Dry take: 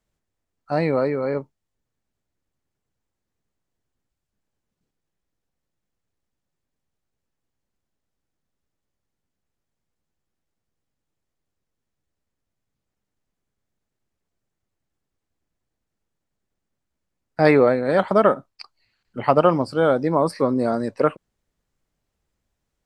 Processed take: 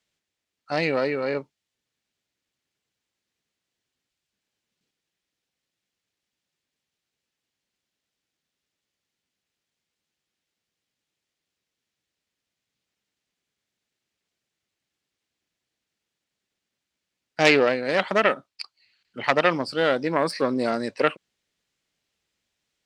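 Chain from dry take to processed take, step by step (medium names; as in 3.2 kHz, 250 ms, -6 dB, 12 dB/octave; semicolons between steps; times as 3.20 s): self-modulated delay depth 0.16 ms; frequency weighting D; in parallel at -3 dB: gain riding; on the sum: trim -8.5 dB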